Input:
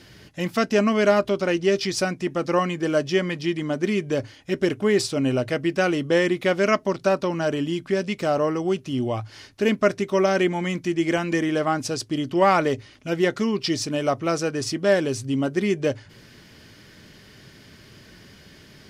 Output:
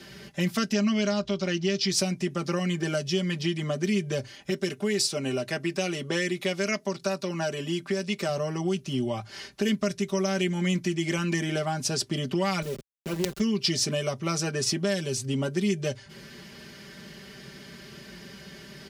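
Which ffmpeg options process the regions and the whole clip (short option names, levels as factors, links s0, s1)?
-filter_complex "[0:a]asettb=1/sr,asplit=3[s0][s1][s2];[s0]atrim=end=0.734[s3];[s1]atrim=start=0.73:end=1.9,asetpts=PTS-STARTPTS,afade=t=in:d=0.004:c=qsin,afade=t=out:st=1.166:d=0.004:c=qsin,lowpass=f=6700:w=0.5412,lowpass=f=6700:w=1.3066,bandreject=f=460:w=5.4[s4];[s2]atrim=start=1.896[s5];[s3][s4]acrossfade=d=0.004:c1=hsin:c2=qsin[s6];[s6][s5]acrossfade=d=0.004:c1=qsin:c2=hsin,asettb=1/sr,asplit=3[s7][s8][s9];[s7]atrim=end=4.504[s10];[s8]atrim=start=4.5:end=8.29,asetpts=PTS-STARTPTS,afade=t=in:d=0.004:c=qsin,afade=t=out:st=3.786:d=0.004:c=qsin,highpass=f=250:p=1,bandreject=f=3100:w=18[s11];[s9]atrim=start=8.286[s12];[s10][s11]acrossfade=d=0.004:c1=hsin:c2=qsin[s13];[s13][s12]acrossfade=d=0.004:c1=qsin:c2=hsin,asettb=1/sr,asplit=3[s14][s15][s16];[s14]atrim=end=12.624[s17];[s15]atrim=start=12.62:end=13.4,asetpts=PTS-STARTPTS,afade=t=in:d=0.004:c=qsin,afade=t=out:st=0.776:d=0.004:c=qsin,acrusher=bits=3:dc=4:mix=0:aa=0.000001,lowshelf=f=660:t=q:w=1.5:g=6.5,aeval=exprs='(tanh(2.24*val(0)+0.75)-tanh(0.75))/2.24':c=same[s18];[s16]atrim=start=13.396[s19];[s17][s18]acrossfade=d=0.004:c1=hsin:c2=qsin[s20];[s20][s19]acrossfade=d=0.004:c1=qsin:c2=hsin,highpass=55,aecho=1:1:5.1:0.8,acrossover=split=160|3000[s21][s22][s23];[s22]acompressor=threshold=0.0355:ratio=6[s24];[s21][s24][s23]amix=inputs=3:normalize=0,volume=1.12"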